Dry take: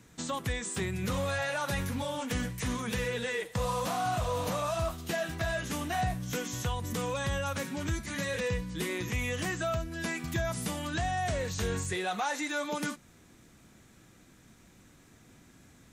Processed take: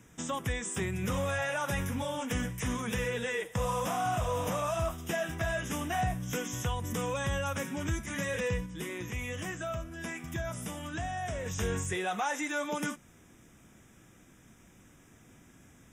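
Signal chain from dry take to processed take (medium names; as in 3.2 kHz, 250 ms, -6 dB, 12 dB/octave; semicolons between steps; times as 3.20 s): 8.66–11.46 s: flange 1.3 Hz, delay 9.4 ms, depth 8 ms, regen +85%; Butterworth band-stop 4.3 kHz, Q 2.9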